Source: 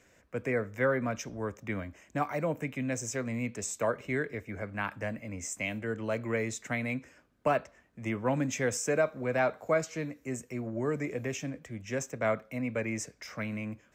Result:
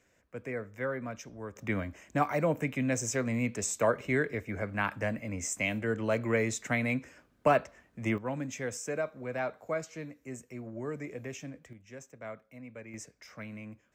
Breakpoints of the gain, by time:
-6.5 dB
from 1.56 s +3 dB
from 8.18 s -6 dB
from 11.73 s -13.5 dB
from 12.94 s -7.5 dB

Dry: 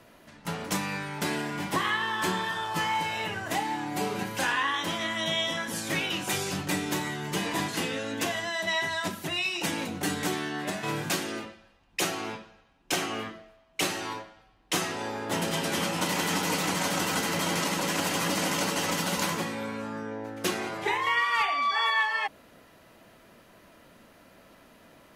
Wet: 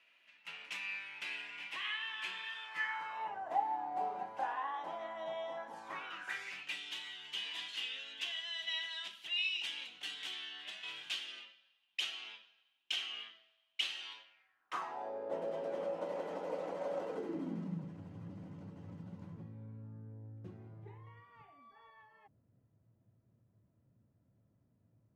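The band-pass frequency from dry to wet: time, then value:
band-pass, Q 4.9
2.62 s 2600 Hz
3.37 s 770 Hz
5.69 s 770 Hz
6.79 s 3100 Hz
14.23 s 3100 Hz
15.16 s 550 Hz
17.04 s 550 Hz
17.97 s 110 Hz

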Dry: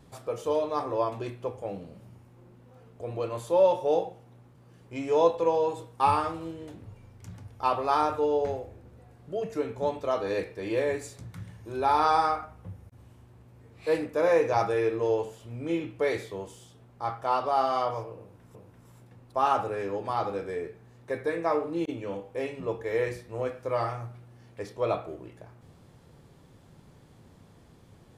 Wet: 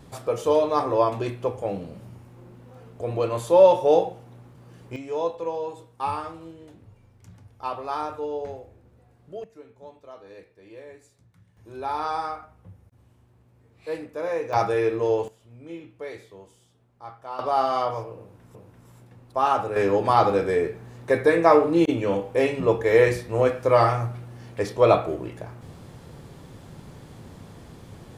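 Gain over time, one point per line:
+7 dB
from 4.96 s -4.5 dB
from 9.44 s -16 dB
from 11.57 s -5 dB
from 14.53 s +3.5 dB
from 15.28 s -9 dB
from 17.39 s +3 dB
from 19.76 s +11 dB

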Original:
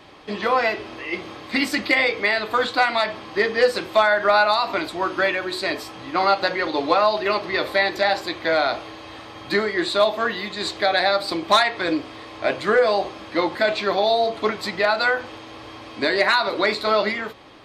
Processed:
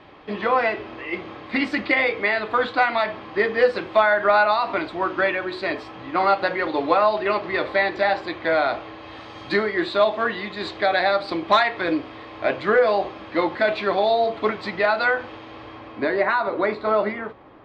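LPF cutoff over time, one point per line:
8.98 s 2700 Hz
9.41 s 6600 Hz
9.64 s 3000 Hz
15.59 s 3000 Hz
16.16 s 1500 Hz

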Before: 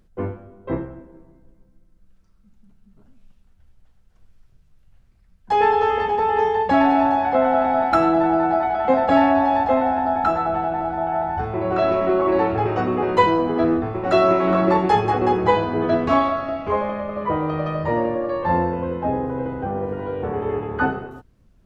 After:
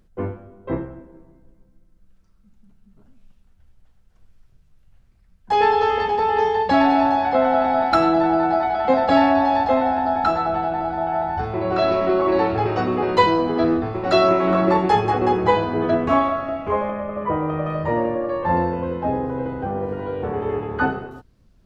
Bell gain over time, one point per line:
bell 4500 Hz 0.74 oct
0 dB
from 5.53 s +10 dB
from 14.29 s +2 dB
from 15.91 s -7 dB
from 16.9 s -14.5 dB
from 17.7 s -4 dB
from 18.57 s +5.5 dB

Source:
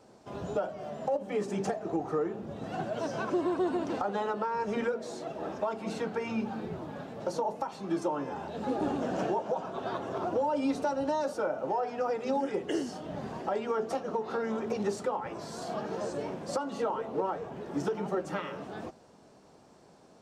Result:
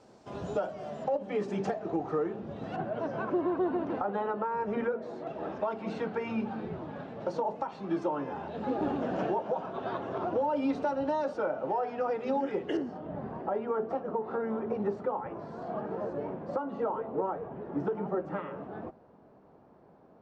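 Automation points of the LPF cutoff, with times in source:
8000 Hz
from 1.04 s 4100 Hz
from 2.76 s 1900 Hz
from 5.27 s 3200 Hz
from 12.77 s 1400 Hz

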